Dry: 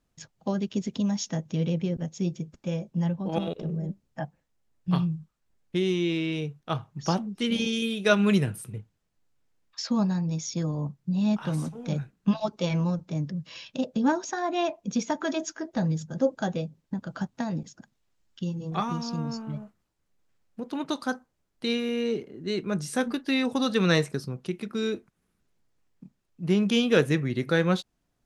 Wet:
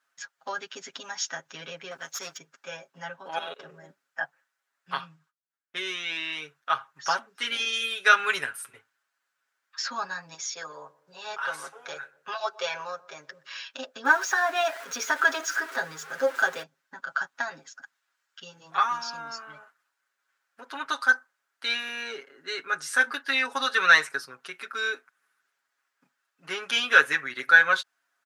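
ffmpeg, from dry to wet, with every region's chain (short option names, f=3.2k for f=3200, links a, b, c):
-filter_complex "[0:a]asettb=1/sr,asplit=3[a][b][c];[a]atrim=end=1.914[d];[b]atrim=start=1.91:end=2.38,asetpts=PTS-STARTPTS,afade=t=in:d=0.004:c=qsin,afade=t=out:st=0.466:d=0.004:c=qsin,highshelf=f=2.1k:g=10.5,aeval=exprs='clip(val(0),-1,0.0158)':c=same[e];[c]atrim=start=2.376[f];[d][e]acrossfade=d=0.004:c1=hsin:c2=qsin[g];[g][f]acrossfade=d=0.004:c1=qsin:c2=hsin,asettb=1/sr,asplit=3[h][i][j];[h]atrim=end=4.934[k];[i]atrim=start=4.93:end=5.77,asetpts=PTS-STARTPTS,afade=t=in:d=0.004:c=qsin,afade=t=out:st=0.836:d=0.004:c=qsin,agate=range=-33dB:threshold=-58dB:ratio=3:release=100:detection=peak,highshelf=f=7.9k:g=-5[l];[j]atrim=start=5.766[m];[k][l]acrossfade=d=0.004:c1=hsin:c2=qsin[n];[n][m]acrossfade=d=0.004:c1=qsin:c2=hsin,asettb=1/sr,asplit=3[o][p][q];[o]atrim=end=10.344[r];[p]atrim=start=10.34:end=13.47,asetpts=PTS-STARTPTS,afade=t=in:d=0.004:c=qsin,afade=t=out:st=3.126:d=0.004:c=qsin,lowshelf=f=330:t=q:w=3:g=-6.5,asplit=2[s][t];[t]adelay=123,lowpass=f=870:p=1,volume=-19dB,asplit=2[u][v];[v]adelay=123,lowpass=f=870:p=1,volume=0.53,asplit=2[w][x];[x]adelay=123,lowpass=f=870:p=1,volume=0.53,asplit=2[y][z];[z]adelay=123,lowpass=f=870:p=1,volume=0.53[aa];[s][u][w][y][aa]amix=inputs=5:normalize=0,atrim=end_sample=138033[ab];[q]atrim=start=13.466[ac];[r][ab]acrossfade=d=0.004:c1=hsin:c2=qsin[ad];[ad][ac]acrossfade=d=0.004:c1=qsin:c2=hsin,asettb=1/sr,asplit=3[ae][af][ag];[ae]atrim=end=14.054[ah];[af]atrim=start=14.05:end=16.63,asetpts=PTS-STARTPTS,afade=t=in:d=0.004:c=qsin,afade=t=out:st=2.576:d=0.004:c=qsin,aeval=exprs='val(0)+0.5*0.0133*sgn(val(0))':c=same,equalizer=f=430:w=2.9:g=9.5[ai];[ag]atrim=start=16.626[aj];[ah][ai]acrossfade=d=0.004:c1=hsin:c2=qsin[ak];[ak][aj]acrossfade=d=0.004:c1=qsin:c2=hsin,highpass=880,equalizer=f=1.5k:w=2:g=13.5,aecho=1:1:7.3:0.84"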